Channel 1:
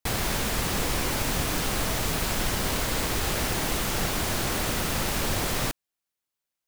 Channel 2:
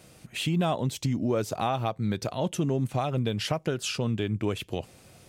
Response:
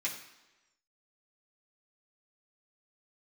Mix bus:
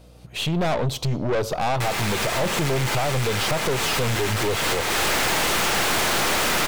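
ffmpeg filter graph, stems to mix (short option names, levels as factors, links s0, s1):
-filter_complex "[0:a]asplit=2[s0][s1];[s1]highpass=f=720:p=1,volume=7.94,asoftclip=type=tanh:threshold=0.376[s2];[s0][s2]amix=inputs=2:normalize=0,lowpass=f=3000:p=1,volume=0.501,adelay=1750,volume=0.841,asplit=2[s3][s4];[s4]volume=0.15[s5];[1:a]equalizer=f=125:t=o:w=1:g=4,equalizer=f=250:t=o:w=1:g=-6,equalizer=f=500:t=o:w=1:g=8,equalizer=f=1000:t=o:w=1:g=5,equalizer=f=2000:t=o:w=1:g=-5,equalizer=f=4000:t=o:w=1:g=5,equalizer=f=8000:t=o:w=1:g=-6,volume=0.841,asplit=3[s6][s7][s8];[s7]volume=0.141[s9];[s8]apad=whole_len=371701[s10];[s3][s10]sidechaincompress=threshold=0.02:ratio=8:attack=11:release=196[s11];[2:a]atrim=start_sample=2205[s12];[s5][s9]amix=inputs=2:normalize=0[s13];[s13][s12]afir=irnorm=-1:irlink=0[s14];[s11][s6][s14]amix=inputs=3:normalize=0,dynaudnorm=f=140:g=5:m=3.76,aeval=exprs='(tanh(10*val(0)+0.45)-tanh(0.45))/10':c=same,aeval=exprs='val(0)+0.00398*(sin(2*PI*60*n/s)+sin(2*PI*2*60*n/s)/2+sin(2*PI*3*60*n/s)/3+sin(2*PI*4*60*n/s)/4+sin(2*PI*5*60*n/s)/5)':c=same"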